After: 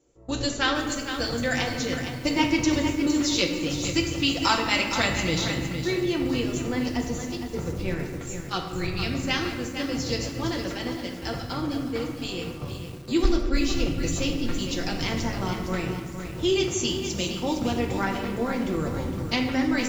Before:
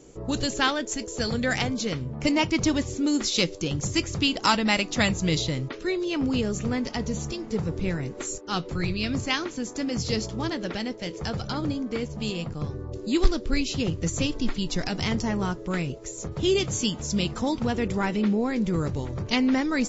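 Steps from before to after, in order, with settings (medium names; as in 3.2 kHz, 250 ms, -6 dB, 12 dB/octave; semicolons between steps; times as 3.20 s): gate -31 dBFS, range -15 dB; peaking EQ 160 Hz -6 dB 0.96 oct; comb of notches 210 Hz; on a send at -3 dB: reverberation RT60 1.6 s, pre-delay 6 ms; on the sum: bit-crushed delay 461 ms, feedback 35%, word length 7-bit, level -8 dB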